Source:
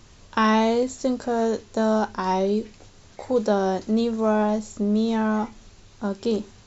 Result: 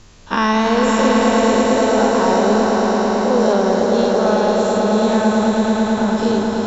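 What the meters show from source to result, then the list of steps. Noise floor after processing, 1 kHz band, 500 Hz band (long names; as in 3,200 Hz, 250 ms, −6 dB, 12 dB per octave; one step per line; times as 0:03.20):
−23 dBFS, +9.0 dB, +9.0 dB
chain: every bin's largest magnitude spread in time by 120 ms
echo that builds up and dies away 110 ms, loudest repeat 5, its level −5.5 dB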